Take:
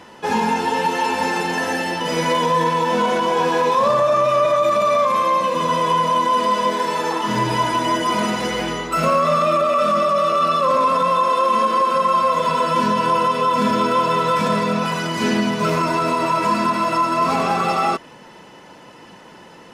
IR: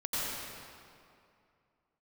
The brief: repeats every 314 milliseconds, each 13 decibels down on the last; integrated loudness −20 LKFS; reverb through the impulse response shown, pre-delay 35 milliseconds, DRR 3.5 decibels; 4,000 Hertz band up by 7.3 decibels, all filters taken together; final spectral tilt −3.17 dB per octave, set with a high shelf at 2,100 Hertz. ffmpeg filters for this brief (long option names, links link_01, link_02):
-filter_complex "[0:a]highshelf=frequency=2100:gain=7,equalizer=frequency=4000:width_type=o:gain=3,aecho=1:1:314|628|942:0.224|0.0493|0.0108,asplit=2[link_01][link_02];[1:a]atrim=start_sample=2205,adelay=35[link_03];[link_02][link_03]afir=irnorm=-1:irlink=0,volume=-10.5dB[link_04];[link_01][link_04]amix=inputs=2:normalize=0,volume=-6dB"